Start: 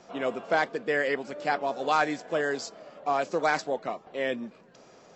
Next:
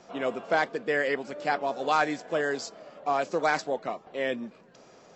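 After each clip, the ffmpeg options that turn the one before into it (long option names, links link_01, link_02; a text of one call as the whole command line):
ffmpeg -i in.wav -af anull out.wav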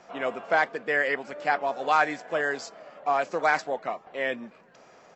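ffmpeg -i in.wav -af "firequalizer=gain_entry='entry(350,0);entry(730,6);entry(1100,6);entry(1900,8);entry(3700,1)':delay=0.05:min_phase=1,volume=-3.5dB" out.wav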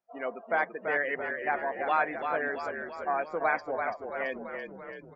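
ffmpeg -i in.wav -filter_complex "[0:a]afftdn=noise_reduction=32:noise_floor=-34,asplit=9[link_01][link_02][link_03][link_04][link_05][link_06][link_07][link_08][link_09];[link_02]adelay=335,afreqshift=-40,volume=-6dB[link_10];[link_03]adelay=670,afreqshift=-80,volume=-10.7dB[link_11];[link_04]adelay=1005,afreqshift=-120,volume=-15.5dB[link_12];[link_05]adelay=1340,afreqshift=-160,volume=-20.2dB[link_13];[link_06]adelay=1675,afreqshift=-200,volume=-24.9dB[link_14];[link_07]adelay=2010,afreqshift=-240,volume=-29.7dB[link_15];[link_08]adelay=2345,afreqshift=-280,volume=-34.4dB[link_16];[link_09]adelay=2680,afreqshift=-320,volume=-39.1dB[link_17];[link_01][link_10][link_11][link_12][link_13][link_14][link_15][link_16][link_17]amix=inputs=9:normalize=0,volume=-5dB" out.wav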